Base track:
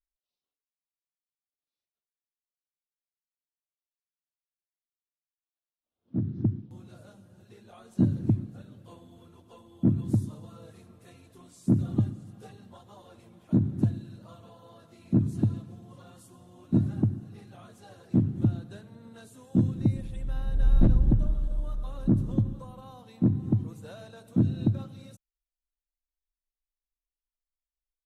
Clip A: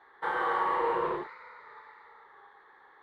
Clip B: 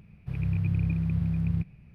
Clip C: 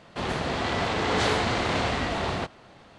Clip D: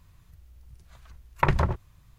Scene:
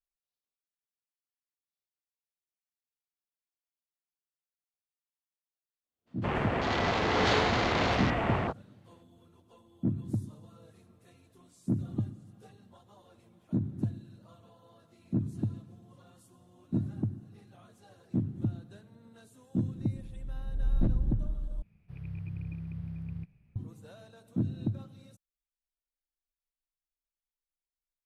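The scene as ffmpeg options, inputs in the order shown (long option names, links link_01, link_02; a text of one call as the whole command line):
ffmpeg -i bed.wav -i cue0.wav -i cue1.wav -i cue2.wav -filter_complex "[0:a]volume=-7dB[link_01];[3:a]afwtdn=0.0178[link_02];[link_01]asplit=2[link_03][link_04];[link_03]atrim=end=21.624[link_05];[2:a]atrim=end=1.94,asetpts=PTS-STARTPTS,volume=-12dB[link_06];[link_04]atrim=start=23.556[link_07];[link_02]atrim=end=2.98,asetpts=PTS-STARTPTS,volume=-1.5dB,afade=type=in:duration=0.02,afade=type=out:start_time=2.96:duration=0.02,adelay=6060[link_08];[link_05][link_06]acrossfade=duration=0.004:curve1=hsin:curve2=hsin[link_09];[link_09][link_07]acrossfade=duration=0.004:curve1=hsin:curve2=hsin[link_10];[link_10][link_08]amix=inputs=2:normalize=0" out.wav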